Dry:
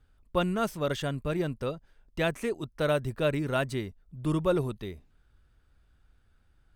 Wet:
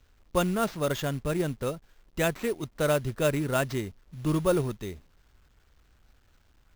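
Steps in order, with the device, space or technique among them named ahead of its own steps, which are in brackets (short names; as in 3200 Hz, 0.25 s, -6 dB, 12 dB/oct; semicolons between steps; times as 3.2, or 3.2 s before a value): early companding sampler (sample-rate reducer 10000 Hz, jitter 0%; companded quantiser 6-bit); gain +1.5 dB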